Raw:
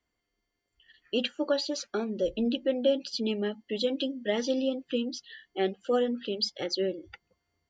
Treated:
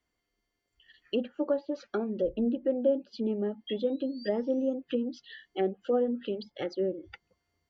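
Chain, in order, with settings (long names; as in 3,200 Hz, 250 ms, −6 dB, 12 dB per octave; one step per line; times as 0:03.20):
sound drawn into the spectrogram rise, 0:03.67–0:04.74, 3,200–6,600 Hz −39 dBFS
treble cut that deepens with the level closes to 830 Hz, closed at −26 dBFS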